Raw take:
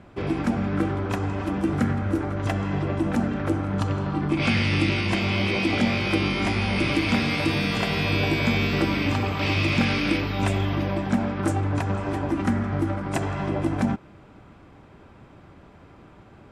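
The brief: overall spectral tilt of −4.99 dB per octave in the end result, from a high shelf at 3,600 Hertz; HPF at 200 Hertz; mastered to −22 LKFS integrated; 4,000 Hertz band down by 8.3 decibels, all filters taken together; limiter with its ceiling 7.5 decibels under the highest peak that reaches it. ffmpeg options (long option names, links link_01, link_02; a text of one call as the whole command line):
ffmpeg -i in.wav -af "highpass=200,highshelf=frequency=3600:gain=-9,equalizer=frequency=4000:width_type=o:gain=-5.5,volume=7.5dB,alimiter=limit=-12dB:level=0:latency=1" out.wav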